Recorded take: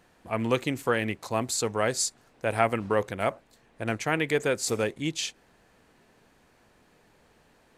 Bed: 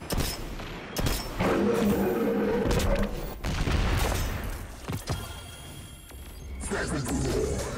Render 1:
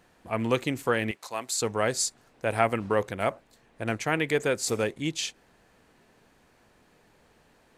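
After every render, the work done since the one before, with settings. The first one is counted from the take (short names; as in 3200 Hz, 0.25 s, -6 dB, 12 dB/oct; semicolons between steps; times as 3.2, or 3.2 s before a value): 1.11–1.62 HPF 1100 Hz 6 dB/oct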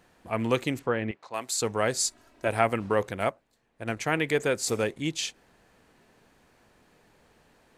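0.79–1.34 tape spacing loss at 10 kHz 27 dB; 2.04–2.48 comb 3.1 ms, depth 69%; 3.24–3.97 upward expander, over -44 dBFS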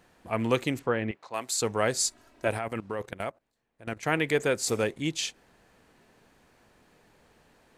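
2.57–4.03 level quantiser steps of 16 dB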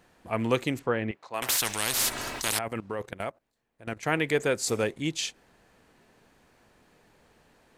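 1.42–2.59 spectral compressor 10:1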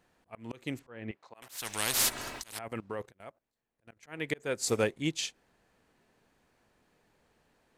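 auto swell 0.285 s; upward expander 1.5:1, over -41 dBFS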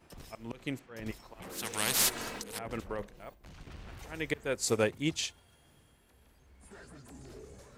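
add bed -22 dB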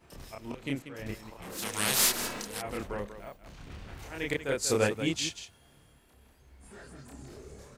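loudspeakers at several distances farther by 10 m -1 dB, 65 m -10 dB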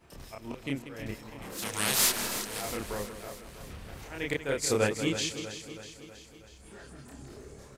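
feedback echo 0.322 s, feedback 57%, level -11.5 dB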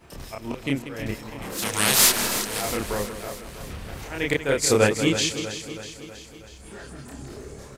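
gain +8 dB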